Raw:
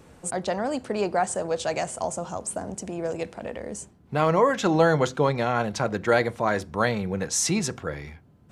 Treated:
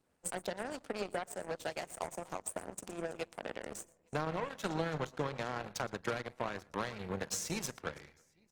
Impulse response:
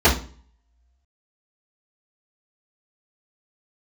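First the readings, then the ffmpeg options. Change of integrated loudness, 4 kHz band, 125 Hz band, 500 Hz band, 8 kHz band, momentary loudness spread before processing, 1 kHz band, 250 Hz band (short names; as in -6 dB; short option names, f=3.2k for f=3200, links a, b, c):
-14.0 dB, -10.5 dB, -14.5 dB, -15.0 dB, -12.5 dB, 13 LU, -14.5 dB, -14.5 dB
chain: -filter_complex "[0:a]lowshelf=f=250:g=-8,acrossover=split=150[a][b];[b]acompressor=threshold=-31dB:ratio=12[c];[a][c]amix=inputs=2:normalize=0,aecho=1:1:44|117|328|855:0.106|0.211|0.126|0.133,asoftclip=type=tanh:threshold=-27.5dB,aeval=exprs='0.0422*(cos(1*acos(clip(val(0)/0.0422,-1,1)))-cos(1*PI/2))+0.0168*(cos(3*acos(clip(val(0)/0.0422,-1,1)))-cos(3*PI/2))+0.00211*(cos(5*acos(clip(val(0)/0.0422,-1,1)))-cos(5*PI/2))+0.000335*(cos(8*acos(clip(val(0)/0.0422,-1,1)))-cos(8*PI/2))':c=same,volume=3dB" -ar 48000 -c:a libopus -b:a 24k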